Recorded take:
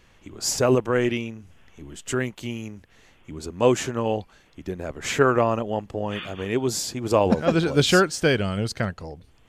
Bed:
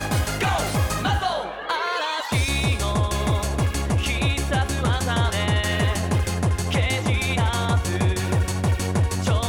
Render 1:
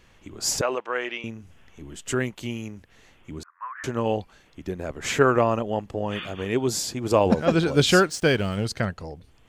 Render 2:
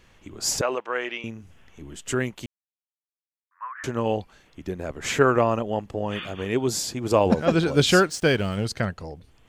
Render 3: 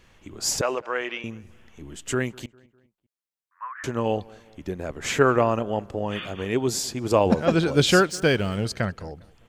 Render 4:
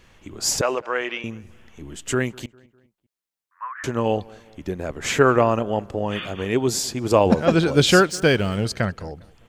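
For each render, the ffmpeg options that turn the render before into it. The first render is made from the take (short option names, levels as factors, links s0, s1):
-filter_complex "[0:a]asettb=1/sr,asplit=3[s0][s1][s2];[s0]atrim=end=0.614[s3];[s1]atrim=start=0.61:end=1.24,asetpts=PTS-STARTPTS,afade=t=in:d=0.004:c=qsin,afade=t=out:st=0.626:d=0.004:c=qsin,highpass=690,lowpass=3900[s4];[s2]atrim=start=1.236[s5];[s3][s4]acrossfade=d=0.004:c1=hsin:c2=qsin[s6];[s6][s5]acrossfade=d=0.004:c1=qsin:c2=hsin,asettb=1/sr,asplit=3[s7][s8][s9];[s7]atrim=end=3.434[s10];[s8]atrim=start=3.43:end=3.84,asetpts=PTS-STARTPTS,afade=t=in:d=0.004:c=qsin,afade=t=out:st=0.406:d=0.004:c=qsin,asuperpass=centerf=1400:order=8:qfactor=1.7[s11];[s9]atrim=start=3.836[s12];[s10][s11]acrossfade=d=0.004:c1=hsin:c2=qsin[s13];[s13][s12]acrossfade=d=0.004:c1=qsin:c2=hsin,asettb=1/sr,asplit=3[s14][s15][s16];[s14]atrim=end=7.994[s17];[s15]atrim=start=7.99:end=8.66,asetpts=PTS-STARTPTS,afade=t=in:d=0.004:c=qsin,afade=t=out:st=0.666:d=0.004:c=qsin,aeval=exprs='sgn(val(0))*max(abs(val(0))-0.00631,0)':c=same[s18];[s16]atrim=start=8.656[s19];[s17][s18]acrossfade=d=0.004:c1=hsin:c2=qsin[s20];[s20][s19]acrossfade=d=0.004:c1=qsin:c2=hsin"
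-filter_complex "[0:a]asplit=3[s0][s1][s2];[s0]atrim=end=2.46,asetpts=PTS-STARTPTS,afade=t=out:st=2.456:d=0.004:c=hsin[s3];[s1]atrim=start=2.46:end=3.51,asetpts=PTS-STARTPTS,volume=0[s4];[s2]atrim=start=3.51,asetpts=PTS-STARTPTS,afade=t=in:d=0.004:c=hsin[s5];[s3][s4][s5]concat=n=3:v=0:a=1"
-filter_complex "[0:a]asplit=2[s0][s1];[s1]adelay=202,lowpass=f=2500:p=1,volume=0.0668,asplit=2[s2][s3];[s3]adelay=202,lowpass=f=2500:p=1,volume=0.46,asplit=2[s4][s5];[s5]adelay=202,lowpass=f=2500:p=1,volume=0.46[s6];[s0][s2][s4][s6]amix=inputs=4:normalize=0"
-af "volume=1.41,alimiter=limit=0.794:level=0:latency=1"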